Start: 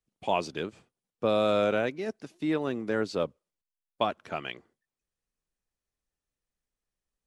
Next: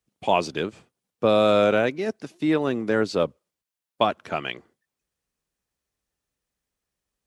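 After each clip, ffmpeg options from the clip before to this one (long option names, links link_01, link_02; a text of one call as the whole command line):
ffmpeg -i in.wav -af "highpass=48,volume=6.5dB" out.wav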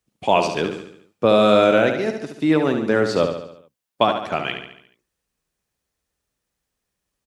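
ffmpeg -i in.wav -af "aecho=1:1:71|142|213|284|355|426:0.447|0.232|0.121|0.0628|0.0327|0.017,volume=3.5dB" out.wav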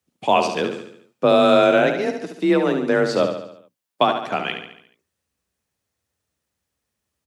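ffmpeg -i in.wav -af "afreqshift=30" out.wav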